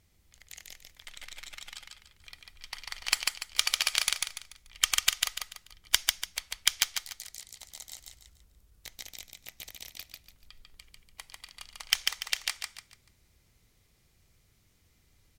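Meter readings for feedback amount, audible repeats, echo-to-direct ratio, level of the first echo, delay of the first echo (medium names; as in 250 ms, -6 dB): 33%, 4, -2.5 dB, -3.0 dB, 145 ms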